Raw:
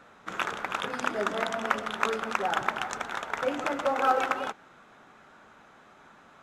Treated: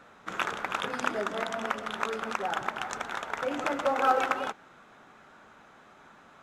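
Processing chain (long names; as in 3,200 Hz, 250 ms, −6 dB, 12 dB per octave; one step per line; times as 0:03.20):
0:01.18–0:03.51: downward compressor 2 to 1, threshold −29 dBFS, peak gain reduction 6 dB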